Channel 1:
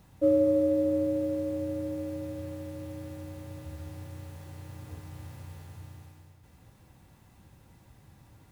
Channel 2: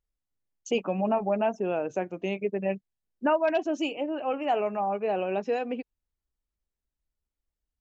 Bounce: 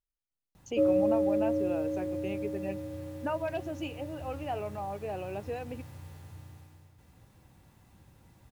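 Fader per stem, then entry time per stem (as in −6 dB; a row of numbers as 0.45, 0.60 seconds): −2.0, −9.0 decibels; 0.55, 0.00 seconds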